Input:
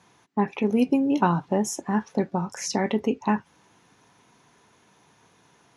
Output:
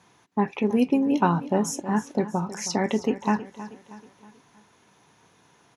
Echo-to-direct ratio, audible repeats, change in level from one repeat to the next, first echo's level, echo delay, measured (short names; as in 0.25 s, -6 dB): -14.0 dB, 3, -7.0 dB, -15.0 dB, 0.318 s